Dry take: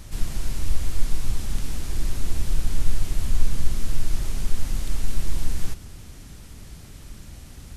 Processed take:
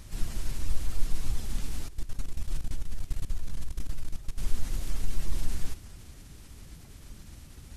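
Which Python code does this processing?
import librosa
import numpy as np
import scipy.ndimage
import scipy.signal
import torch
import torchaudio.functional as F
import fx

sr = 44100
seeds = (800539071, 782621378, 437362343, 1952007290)

y = fx.spec_quant(x, sr, step_db=15)
y = fx.level_steps(y, sr, step_db=18, at=(1.88, 4.38))
y = F.gain(torch.from_numpy(y), -5.5).numpy()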